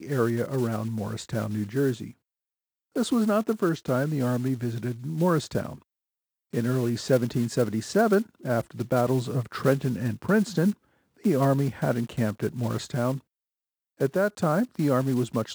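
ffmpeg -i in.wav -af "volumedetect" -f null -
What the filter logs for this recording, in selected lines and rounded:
mean_volume: -26.4 dB
max_volume: -8.4 dB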